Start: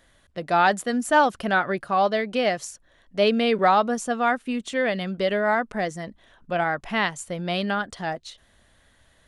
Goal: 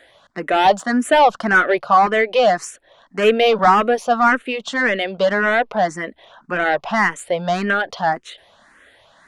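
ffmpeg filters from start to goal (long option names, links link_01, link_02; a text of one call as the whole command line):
ffmpeg -i in.wav -filter_complex "[0:a]asplit=2[link_01][link_02];[link_02]highpass=frequency=720:poles=1,volume=18dB,asoftclip=type=tanh:threshold=-7dB[link_03];[link_01][link_03]amix=inputs=2:normalize=0,lowpass=frequency=1500:poles=1,volume=-6dB,lowshelf=frequency=140:gain=-8.5,asplit=2[link_04][link_05];[link_05]afreqshift=1.8[link_06];[link_04][link_06]amix=inputs=2:normalize=1,volume=6.5dB" out.wav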